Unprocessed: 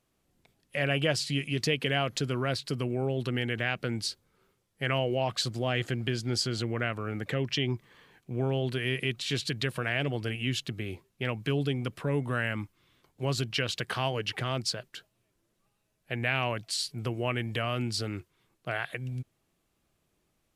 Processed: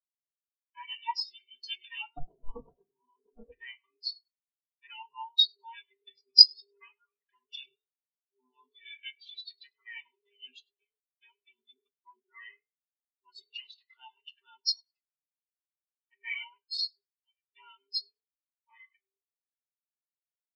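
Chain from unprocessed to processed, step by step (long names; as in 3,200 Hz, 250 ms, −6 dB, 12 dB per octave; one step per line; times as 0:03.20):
frequency inversion band by band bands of 500 Hz
meter weighting curve ITU-R 468
0:02.16–0:03.52: sample-rate reduction 2,000 Hz, jitter 0%
0:17.01–0:17.53: guitar amp tone stack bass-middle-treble 5-5-5
echo with shifted repeats 101 ms, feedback 50%, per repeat +45 Hz, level −10 dB
rectangular room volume 910 cubic metres, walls furnished, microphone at 1.7 metres
every bin expanded away from the loudest bin 4 to 1
level +2.5 dB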